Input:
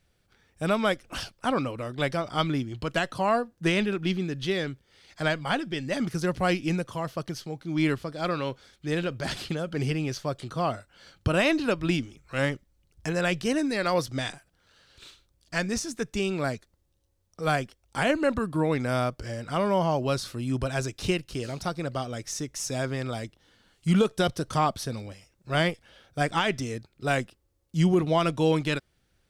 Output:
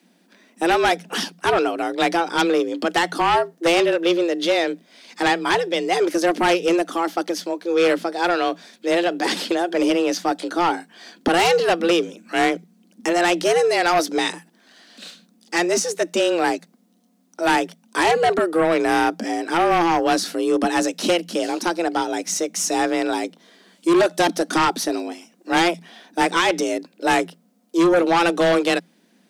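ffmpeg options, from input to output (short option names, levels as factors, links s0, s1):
-af "afreqshift=170,aeval=exprs='0.316*(cos(1*acos(clip(val(0)/0.316,-1,1)))-cos(1*PI/2))+0.141*(cos(5*acos(clip(val(0)/0.316,-1,1)))-cos(5*PI/2))':c=same"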